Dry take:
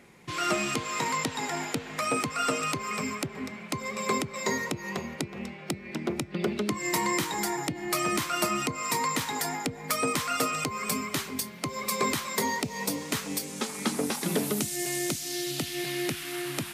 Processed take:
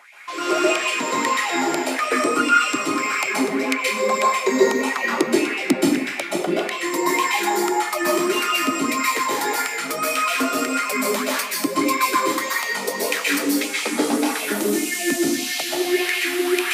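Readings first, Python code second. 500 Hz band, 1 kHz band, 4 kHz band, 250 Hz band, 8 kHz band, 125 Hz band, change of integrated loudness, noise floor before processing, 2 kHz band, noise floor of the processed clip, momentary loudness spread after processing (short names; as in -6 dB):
+11.0 dB, +9.5 dB, +8.0 dB, +9.5 dB, +6.0 dB, -4.5 dB, +9.5 dB, -44 dBFS, +11.0 dB, -28 dBFS, 4 LU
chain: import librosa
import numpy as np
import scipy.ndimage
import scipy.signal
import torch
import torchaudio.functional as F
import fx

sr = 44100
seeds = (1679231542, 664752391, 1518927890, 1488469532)

y = fx.rider(x, sr, range_db=10, speed_s=0.5)
y = fx.filter_lfo_highpass(y, sr, shape='sine', hz=1.7, low_hz=260.0, high_hz=2600.0, q=5.0)
y = fx.rev_plate(y, sr, seeds[0], rt60_s=0.63, hf_ratio=0.95, predelay_ms=115, drr_db=-4.5)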